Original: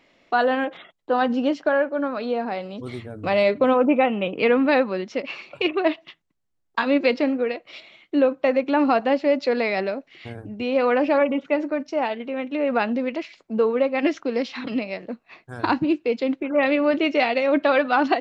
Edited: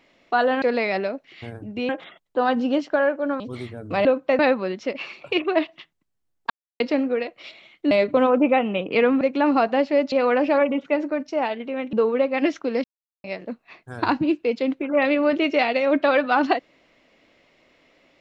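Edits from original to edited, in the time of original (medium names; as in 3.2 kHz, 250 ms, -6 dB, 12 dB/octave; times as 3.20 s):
2.13–2.73 s: delete
3.38–4.68 s: swap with 8.20–8.54 s
6.79–7.09 s: mute
9.45–10.72 s: move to 0.62 s
12.53–13.54 s: delete
14.45–14.85 s: mute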